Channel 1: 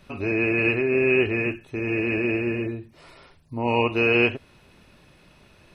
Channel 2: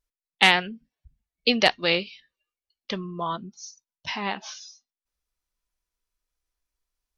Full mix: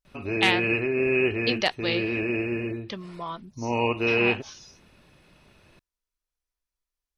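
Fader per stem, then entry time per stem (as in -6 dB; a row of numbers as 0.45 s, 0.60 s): -3.0 dB, -5.5 dB; 0.05 s, 0.00 s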